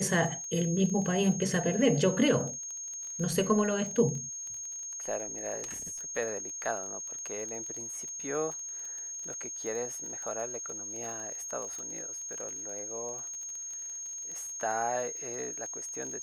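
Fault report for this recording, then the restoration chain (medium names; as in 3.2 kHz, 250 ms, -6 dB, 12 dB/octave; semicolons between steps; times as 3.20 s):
crackle 22 per s -37 dBFS
whine 6.5 kHz -37 dBFS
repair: de-click; band-stop 6.5 kHz, Q 30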